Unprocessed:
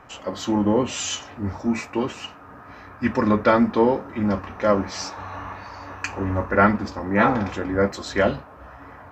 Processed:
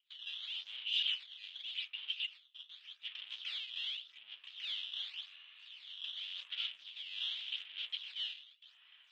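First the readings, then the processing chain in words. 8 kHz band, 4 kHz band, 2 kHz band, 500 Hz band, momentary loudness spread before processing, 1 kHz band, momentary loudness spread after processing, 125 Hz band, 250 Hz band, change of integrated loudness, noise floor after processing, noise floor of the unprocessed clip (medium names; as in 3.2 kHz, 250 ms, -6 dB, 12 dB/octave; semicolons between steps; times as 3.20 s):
under -30 dB, +0.5 dB, -18.0 dB, under -40 dB, 17 LU, under -40 dB, 15 LU, under -40 dB, under -40 dB, -17.0 dB, -66 dBFS, -44 dBFS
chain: gate with hold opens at -34 dBFS; rotary cabinet horn 8 Hz, later 0.7 Hz, at 2.56 s; valve stage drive 32 dB, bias 0.55; decimation with a swept rate 11×, swing 160% 0.87 Hz; Butterworth band-pass 3.2 kHz, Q 4.1; trim +11 dB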